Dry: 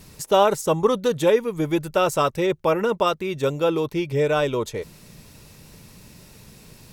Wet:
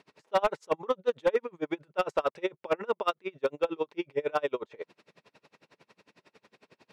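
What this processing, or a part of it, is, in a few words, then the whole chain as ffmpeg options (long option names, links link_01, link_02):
helicopter radio: -filter_complex "[0:a]asettb=1/sr,asplit=3[link_01][link_02][link_03];[link_01]atrim=end=2.364[link_04];[link_02]atrim=start=2.36:end=3.27,asetpts=PTS-STARTPTS,afade=type=in:duration=0.004:curve=qsin,afade=type=out:start_time=0.906:duration=0.004:curve=qsin,highshelf=frequency=4800:gain=5[link_05];[link_03]atrim=start=3.266[link_06];[link_04][link_05]acrossfade=duration=0.004:curve1=hsin:curve2=qsin[link_07];[link_07][link_06]acrossfade=duration=0.004:curve1=qsin:curve2=hsin,highpass=400,lowpass=2700,aeval=exprs='val(0)*pow(10,-32*(0.5-0.5*cos(2*PI*11*n/s))/20)':channel_layout=same,asoftclip=type=hard:threshold=-17.5dB"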